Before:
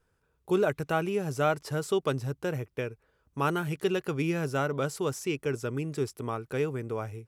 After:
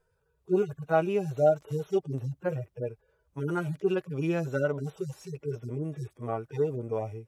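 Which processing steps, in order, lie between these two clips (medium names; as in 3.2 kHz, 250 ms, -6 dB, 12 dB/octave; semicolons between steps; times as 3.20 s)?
harmonic-percussive separation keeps harmonic; peaking EQ 640 Hz +8 dB 0.79 oct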